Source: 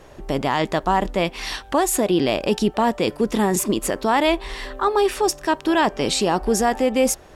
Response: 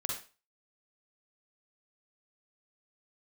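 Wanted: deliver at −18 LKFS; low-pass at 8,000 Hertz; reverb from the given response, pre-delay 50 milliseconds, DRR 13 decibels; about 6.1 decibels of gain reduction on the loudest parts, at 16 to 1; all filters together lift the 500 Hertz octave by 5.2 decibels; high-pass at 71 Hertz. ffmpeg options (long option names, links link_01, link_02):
-filter_complex "[0:a]highpass=71,lowpass=8000,equalizer=frequency=500:width_type=o:gain=6.5,acompressor=threshold=-15dB:ratio=16,asplit=2[link_01][link_02];[1:a]atrim=start_sample=2205,adelay=50[link_03];[link_02][link_03]afir=irnorm=-1:irlink=0,volume=-15.5dB[link_04];[link_01][link_04]amix=inputs=2:normalize=0,volume=3.5dB"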